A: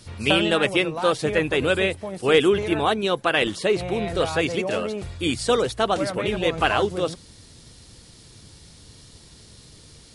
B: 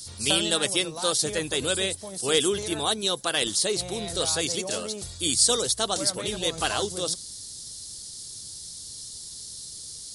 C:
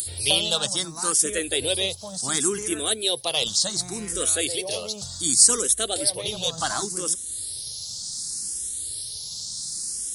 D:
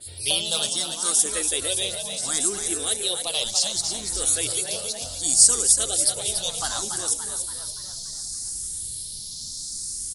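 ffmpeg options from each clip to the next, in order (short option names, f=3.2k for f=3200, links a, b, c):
-af "aexciter=amount=10.1:drive=3.7:freq=3.7k,volume=-7.5dB"
-filter_complex "[0:a]acompressor=mode=upward:threshold=-29dB:ratio=2.5,crystalizer=i=1:c=0,asplit=2[a][b];[b]afreqshift=0.68[c];[a][c]amix=inputs=2:normalize=1,volume=2dB"
-filter_complex "[0:a]asubboost=boost=9:cutoff=52,asplit=2[a][b];[b]asplit=7[c][d][e][f][g][h][i];[c]adelay=286,afreqshift=71,volume=-6.5dB[j];[d]adelay=572,afreqshift=142,volume=-12dB[k];[e]adelay=858,afreqshift=213,volume=-17.5dB[l];[f]adelay=1144,afreqshift=284,volume=-23dB[m];[g]adelay=1430,afreqshift=355,volume=-28.6dB[n];[h]adelay=1716,afreqshift=426,volume=-34.1dB[o];[i]adelay=2002,afreqshift=497,volume=-39.6dB[p];[j][k][l][m][n][o][p]amix=inputs=7:normalize=0[q];[a][q]amix=inputs=2:normalize=0,adynamicequalizer=threshold=0.02:dfrequency=3800:dqfactor=0.7:tfrequency=3800:tqfactor=0.7:attack=5:release=100:ratio=0.375:range=3:mode=boostabove:tftype=highshelf,volume=-5dB"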